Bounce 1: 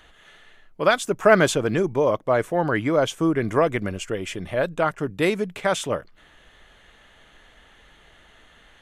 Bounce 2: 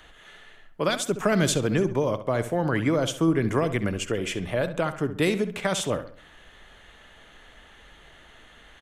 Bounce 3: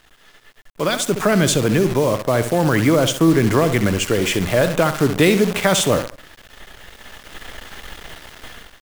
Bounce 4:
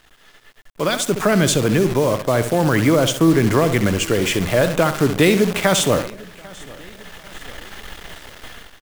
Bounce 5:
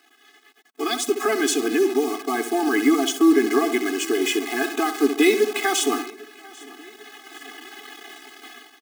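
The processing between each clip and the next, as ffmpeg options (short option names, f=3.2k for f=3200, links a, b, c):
-filter_complex "[0:a]acrossover=split=280|3000[a][b][c];[b]acompressor=threshold=-26dB:ratio=6[d];[a][d][c]amix=inputs=3:normalize=0,asplit=2[e][f];[f]adelay=67,lowpass=f=3.9k:p=1,volume=-11.5dB,asplit=2[g][h];[h]adelay=67,lowpass=f=3.9k:p=1,volume=0.41,asplit=2[i][j];[j]adelay=67,lowpass=f=3.9k:p=1,volume=0.41,asplit=2[k][l];[l]adelay=67,lowpass=f=3.9k:p=1,volume=0.41[m];[e][g][i][k][m]amix=inputs=5:normalize=0,volume=1.5dB"
-filter_complex "[0:a]asplit=2[a][b];[b]alimiter=limit=-20.5dB:level=0:latency=1:release=15,volume=-1dB[c];[a][c]amix=inputs=2:normalize=0,acrusher=bits=6:dc=4:mix=0:aa=0.000001,dynaudnorm=f=530:g=3:m=15.5dB,volume=-3dB"
-af "aecho=1:1:796|1592|2388:0.0708|0.0354|0.0177"
-af "afftfilt=real='re*eq(mod(floor(b*sr/1024/220),2),1)':imag='im*eq(mod(floor(b*sr/1024/220),2),1)':win_size=1024:overlap=0.75"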